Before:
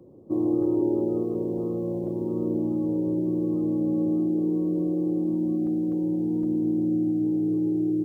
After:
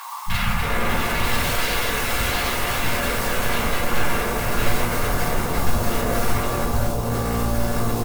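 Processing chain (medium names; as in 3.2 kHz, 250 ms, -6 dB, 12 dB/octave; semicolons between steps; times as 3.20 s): spectral peaks clipped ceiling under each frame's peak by 30 dB; elliptic band-stop 210–840 Hz; high-order bell 570 Hz -8.5 dB 1.2 oct; compressor with a negative ratio -34 dBFS, ratio -0.5; 2.44–4.81 s: waveshaping leveller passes 1; peak limiter -28.5 dBFS, peak gain reduction 7.5 dB; sine folder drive 15 dB, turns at -28.5 dBFS; three bands offset in time highs, lows, mids 260/320 ms, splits 240/810 Hz; simulated room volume 150 m³, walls furnished, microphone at 4.2 m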